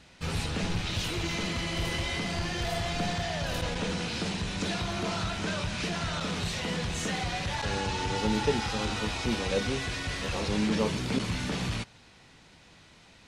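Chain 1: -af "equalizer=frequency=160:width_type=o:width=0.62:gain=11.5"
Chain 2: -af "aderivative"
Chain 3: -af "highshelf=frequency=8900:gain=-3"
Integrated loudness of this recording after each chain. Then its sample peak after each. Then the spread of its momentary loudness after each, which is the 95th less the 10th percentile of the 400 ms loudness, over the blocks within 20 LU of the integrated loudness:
−27.5, −40.0, −31.0 LKFS; −12.5, −27.5, −15.0 dBFS; 4, 3, 4 LU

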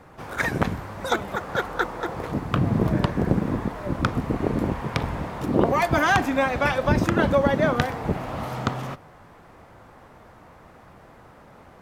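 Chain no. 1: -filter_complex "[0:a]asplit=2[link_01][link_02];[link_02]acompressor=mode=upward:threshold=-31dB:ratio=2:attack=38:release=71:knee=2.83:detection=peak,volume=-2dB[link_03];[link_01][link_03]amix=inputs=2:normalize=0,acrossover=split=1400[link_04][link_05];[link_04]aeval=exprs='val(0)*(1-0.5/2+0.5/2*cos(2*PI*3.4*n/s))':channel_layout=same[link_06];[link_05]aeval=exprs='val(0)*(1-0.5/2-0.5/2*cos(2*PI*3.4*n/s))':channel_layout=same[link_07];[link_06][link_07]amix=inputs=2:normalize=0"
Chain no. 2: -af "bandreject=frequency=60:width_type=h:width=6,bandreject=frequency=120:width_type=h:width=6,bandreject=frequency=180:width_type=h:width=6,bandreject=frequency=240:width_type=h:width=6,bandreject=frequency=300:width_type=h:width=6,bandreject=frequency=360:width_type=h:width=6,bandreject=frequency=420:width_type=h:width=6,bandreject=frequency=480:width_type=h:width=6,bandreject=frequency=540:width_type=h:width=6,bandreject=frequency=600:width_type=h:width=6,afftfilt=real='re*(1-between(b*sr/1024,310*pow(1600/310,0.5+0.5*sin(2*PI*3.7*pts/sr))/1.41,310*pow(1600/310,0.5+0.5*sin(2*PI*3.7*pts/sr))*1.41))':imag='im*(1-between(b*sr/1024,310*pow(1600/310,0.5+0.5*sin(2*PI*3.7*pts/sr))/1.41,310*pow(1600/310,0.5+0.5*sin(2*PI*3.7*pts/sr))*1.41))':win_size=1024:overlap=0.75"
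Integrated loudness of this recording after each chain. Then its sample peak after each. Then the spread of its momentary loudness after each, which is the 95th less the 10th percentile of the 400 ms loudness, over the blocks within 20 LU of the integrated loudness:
−21.5, −26.0 LKFS; −1.5, −5.5 dBFS; 24, 10 LU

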